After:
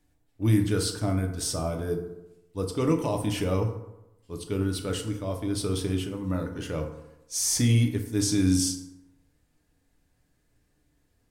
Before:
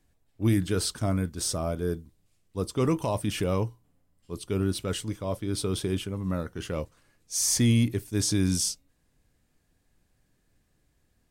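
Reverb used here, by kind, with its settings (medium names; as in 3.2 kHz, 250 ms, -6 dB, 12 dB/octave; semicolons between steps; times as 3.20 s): FDN reverb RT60 0.94 s, low-frequency decay 0.95×, high-frequency decay 0.5×, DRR 3 dB; trim -1.5 dB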